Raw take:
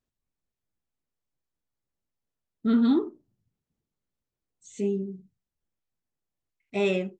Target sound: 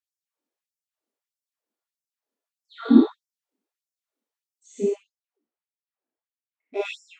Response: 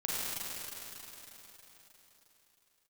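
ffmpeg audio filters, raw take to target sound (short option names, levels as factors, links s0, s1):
-filter_complex "[0:a]tiltshelf=f=800:g=4.5,asplit=3[s0][s1][s2];[s0]afade=t=out:st=4.86:d=0.02[s3];[s1]adynamicsmooth=sensitivity=3:basefreq=2800,afade=t=in:st=4.86:d=0.02,afade=t=out:st=6.83:d=0.02[s4];[s2]afade=t=in:st=6.83:d=0.02[s5];[s3][s4][s5]amix=inputs=3:normalize=0[s6];[1:a]atrim=start_sample=2205,afade=t=out:st=0.26:d=0.01,atrim=end_sample=11907,asetrate=57330,aresample=44100[s7];[s6][s7]afir=irnorm=-1:irlink=0,afftfilt=real='re*gte(b*sr/1024,210*pow(5000/210,0.5+0.5*sin(2*PI*1.6*pts/sr)))':imag='im*gte(b*sr/1024,210*pow(5000/210,0.5+0.5*sin(2*PI*1.6*pts/sr)))':win_size=1024:overlap=0.75,volume=1.5"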